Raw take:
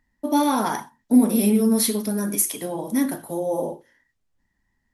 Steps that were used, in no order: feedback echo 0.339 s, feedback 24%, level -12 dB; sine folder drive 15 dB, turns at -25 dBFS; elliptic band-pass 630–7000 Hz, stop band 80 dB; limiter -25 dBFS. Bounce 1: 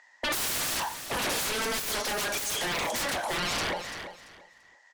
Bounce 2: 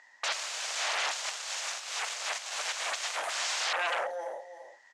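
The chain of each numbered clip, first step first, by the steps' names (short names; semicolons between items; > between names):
elliptic band-pass > sine folder > feedback echo > limiter; feedback echo > sine folder > limiter > elliptic band-pass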